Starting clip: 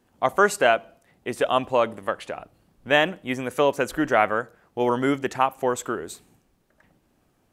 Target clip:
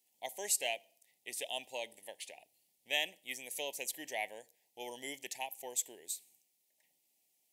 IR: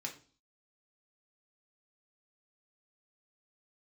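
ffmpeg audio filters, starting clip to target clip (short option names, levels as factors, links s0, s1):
-af "asuperstop=centerf=1300:order=8:qfactor=1.3,aderivative"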